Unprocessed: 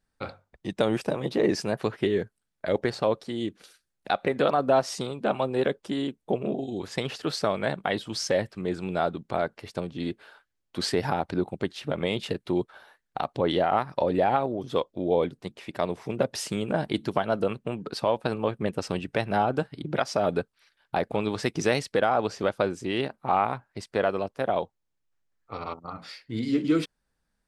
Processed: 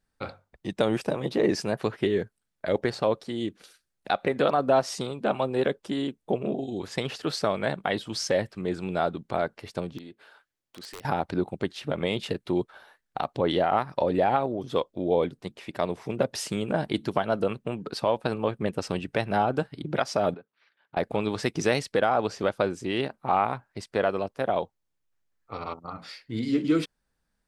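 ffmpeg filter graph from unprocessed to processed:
ffmpeg -i in.wav -filter_complex "[0:a]asettb=1/sr,asplit=3[link_01][link_02][link_03];[link_01]atrim=end=9.984[link_04];[link_02]atrim=start=9.98:end=11.05,asetpts=PTS-STARTPTS,afade=type=in:duration=0.004:curve=qsin,afade=type=out:start_time=1.066:duration=0.004:curve=qsin,lowshelf=frequency=84:gain=-12,acompressor=threshold=-51dB:ratio=2:attack=3.2:release=140:knee=1:detection=peak,aeval=exprs='(mod(44.7*val(0)+1,2)-1)/44.7':channel_layout=same[link_05];[link_03]atrim=start=11.046[link_06];[link_04][link_05]acrossfade=duration=0.004:curve1=hsin:curve2=qsin[link_07];[link_07][link_06]acrossfade=duration=0.004:curve1=qsin:curve2=hsin,asettb=1/sr,asplit=3[link_08][link_09][link_10];[link_08]atrim=end=20.344[link_11];[link_09]atrim=start=20.34:end=20.97,asetpts=PTS-STARTPTS,afade=type=in:duration=0.004:curve=qsin,afade=type=out:start_time=0.626:duration=0.004:curve=qsin,acompressor=threshold=-41dB:ratio=6:attack=3.2:release=140:knee=1:detection=peak,highpass=180,lowpass=2900[link_12];[link_10]atrim=start=20.966[link_13];[link_11][link_12]acrossfade=duration=0.004:curve1=hsin:curve2=qsin[link_14];[link_14][link_13]acrossfade=duration=0.004:curve1=qsin:curve2=hsin" out.wav

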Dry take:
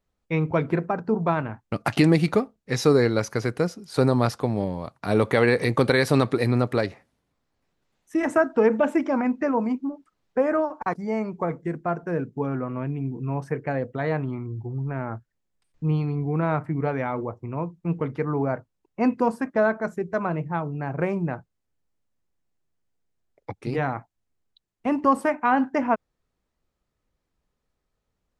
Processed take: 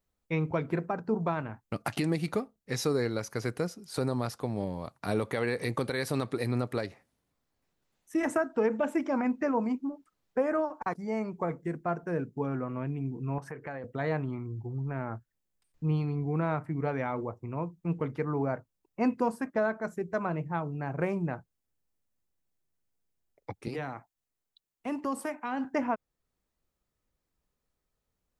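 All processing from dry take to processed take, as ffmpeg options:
ffmpeg -i in.wav -filter_complex "[0:a]asettb=1/sr,asplit=3[link_01][link_02][link_03];[link_01]atrim=end=13.384[link_04];[link_02]atrim=start=13.38:end=13.84,asetpts=PTS-STARTPTS,afade=type=in:duration=0.004:curve=qsin,afade=type=out:start_time=0.456:duration=0.004:curve=qsin,acompressor=threshold=-37dB:ratio=3:attack=3.2:release=140:knee=1:detection=peak,equalizer=frequency=1300:width_type=o:width=2.4:gain=8[link_05];[link_03]atrim=start=13.836[link_06];[link_04][link_05]acrossfade=duration=0.004:curve1=hsin:curve2=qsin[link_07];[link_07][link_06]acrossfade=duration=0.004:curve1=qsin:curve2=hsin,asettb=1/sr,asplit=3[link_08][link_09][link_10];[link_08]atrim=end=23.684[link_11];[link_09]atrim=start=23.68:end=25.65,asetpts=PTS-STARTPTS,afade=type=in:duration=0.004:curve=qsin,afade=type=out:start_time=1.966:duration=0.004:curve=qsin,lowshelf=frequency=290:gain=-9,acrossover=split=430|3000[link_12][link_13][link_14];[link_13]acompressor=threshold=-36dB:ratio=2:attack=3.2:release=140:knee=2.83:detection=peak[link_15];[link_12][link_15][link_14]amix=inputs=3:normalize=0[link_16];[link_10]atrim=start=25.646[link_17];[link_11][link_16]acrossfade=duration=0.004:curve1=hsin:curve2=qsin[link_18];[link_18][link_17]acrossfade=duration=0.004:curve1=qsin:curve2=hsin,highshelf=frequency=8100:gain=10,alimiter=limit=-13dB:level=0:latency=1:release=428,volume=-5dB" out.wav

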